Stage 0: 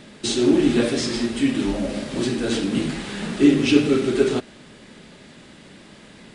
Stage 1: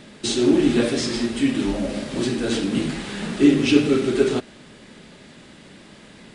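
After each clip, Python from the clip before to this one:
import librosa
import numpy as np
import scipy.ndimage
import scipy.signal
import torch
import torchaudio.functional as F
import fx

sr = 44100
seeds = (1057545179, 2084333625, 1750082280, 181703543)

y = x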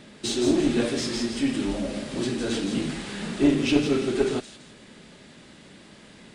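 y = fx.diode_clip(x, sr, knee_db=-10.0)
y = fx.echo_wet_highpass(y, sr, ms=168, feedback_pct=36, hz=3900.0, wet_db=-4.0)
y = y * librosa.db_to_amplitude(-3.5)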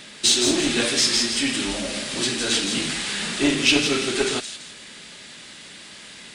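y = fx.tilt_shelf(x, sr, db=-8.5, hz=1100.0)
y = y * librosa.db_to_amplitude(5.5)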